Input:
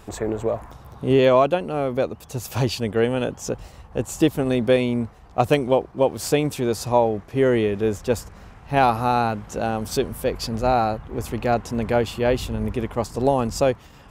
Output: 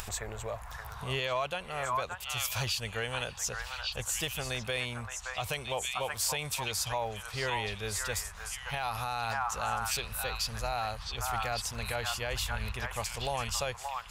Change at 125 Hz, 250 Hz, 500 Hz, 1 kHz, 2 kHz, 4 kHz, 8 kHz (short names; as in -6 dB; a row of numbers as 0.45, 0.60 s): -12.0, -23.5, -18.0, -10.5, -3.0, -0.5, +1.0 dB